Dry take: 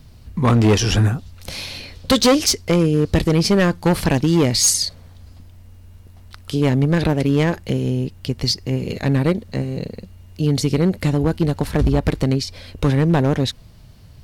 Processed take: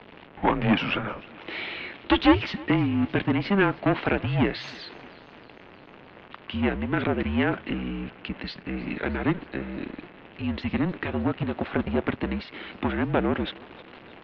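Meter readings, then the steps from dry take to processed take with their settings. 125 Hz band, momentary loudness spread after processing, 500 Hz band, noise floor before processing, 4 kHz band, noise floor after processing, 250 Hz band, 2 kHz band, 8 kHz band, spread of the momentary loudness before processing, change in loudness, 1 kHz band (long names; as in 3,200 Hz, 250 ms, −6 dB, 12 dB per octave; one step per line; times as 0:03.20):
−13.0 dB, 16 LU, −8.5 dB, −44 dBFS, −11.5 dB, −49 dBFS, −6.5 dB, −1.0 dB, below −40 dB, 12 LU, −8.0 dB, −2.5 dB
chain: converter with a step at zero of −30 dBFS
feedback echo with a high-pass in the loop 311 ms, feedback 63%, high-pass 420 Hz, level −21.5 dB
single-sideband voice off tune −200 Hz 390–3,200 Hz
level −1.5 dB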